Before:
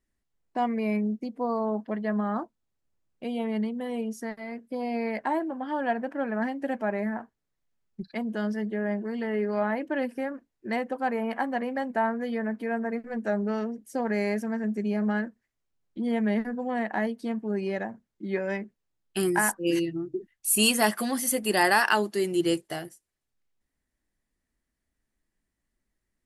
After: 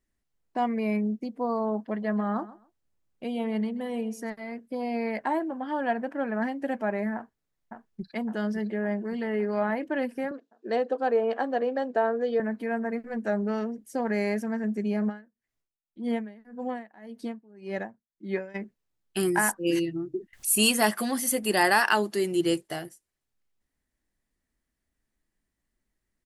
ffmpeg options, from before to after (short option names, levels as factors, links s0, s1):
-filter_complex "[0:a]asettb=1/sr,asplit=3[s0][s1][s2];[s0]atrim=end=1.784[s3];[s1]atrim=start=1.78:end=4.3,asetpts=PTS-STARTPTS,afade=t=in:d=0.004:c=qsin,afade=t=out:st=2.516:d=0.004:c=qsin,aecho=1:1:131|262:0.133|0.0253,atrim=end_sample=111132[s4];[s2]atrim=start=4.296[s5];[s3][s4]acrossfade=d=0.004:c1=hsin:c2=qsin[s6];[s6][s5]acrossfade=d=0.004:c1=qsin:c2=hsin,asplit=2[s7][s8];[s8]afade=t=in:st=7.15:d=0.01,afade=t=out:st=8.15:d=0.01,aecho=0:1:560|1120|1680|2240|2800|3360|3920|4480|5040:0.473151|0.307548|0.199906|0.129939|0.0844605|0.0548993|0.0356845|0.023195|0.0150767[s9];[s7][s9]amix=inputs=2:normalize=0,asettb=1/sr,asplit=3[s10][s11][s12];[s10]atrim=end=10.314[s13];[s11]atrim=start=10.31:end=12.4,asetpts=PTS-STARTPTS,afade=t=in:d=0.004:c=qsin,afade=t=out:st=2.086:d=0.004:c=qsin,highpass=f=180:w=0.5412,highpass=f=180:w=1.3066,equalizer=f=210:t=q:w=4:g=-7,equalizer=f=460:t=q:w=4:g=9,equalizer=f=660:t=q:w=4:g=3,equalizer=f=940:t=q:w=4:g=-5,equalizer=f=2100:t=q:w=4:g=-9,equalizer=f=3700:t=q:w=4:g=4,lowpass=f=7100:w=0.5412,lowpass=f=7100:w=1.3066[s14];[s12]atrim=start=12.396[s15];[s13][s14]acrossfade=d=0.004:c1=hsin:c2=qsin[s16];[s16][s15]acrossfade=d=0.004:c1=qsin:c2=hsin,asplit=3[s17][s18][s19];[s17]afade=t=out:st=15.08:d=0.02[s20];[s18]aeval=exprs='val(0)*pow(10,-25*(0.5-0.5*cos(2*PI*1.8*n/s))/20)':c=same,afade=t=in:st=15.08:d=0.02,afade=t=out:st=18.54:d=0.02[s21];[s19]afade=t=in:st=18.54:d=0.02[s22];[s20][s21][s22]amix=inputs=3:normalize=0,asettb=1/sr,asplit=3[s23][s24][s25];[s23]atrim=end=20.334[s26];[s24]atrim=start=20.33:end=22.63,asetpts=PTS-STARTPTS,afade=t=in:d=0.004:c=qsin,afade=t=out:st=2.296:d=0.004:c=qsin,acompressor=mode=upward:threshold=0.0316:ratio=2.5:attack=3.2:release=140:knee=2.83:detection=peak[s27];[s25]atrim=start=22.626[s28];[s26][s27]acrossfade=d=0.004:c1=hsin:c2=qsin[s29];[s29][s28]acrossfade=d=0.004:c1=qsin:c2=hsin"